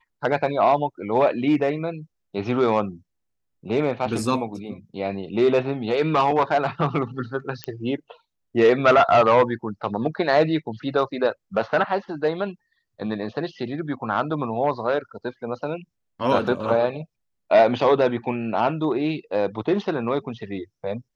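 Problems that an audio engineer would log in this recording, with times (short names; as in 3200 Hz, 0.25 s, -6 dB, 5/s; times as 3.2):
7.64 pop -13 dBFS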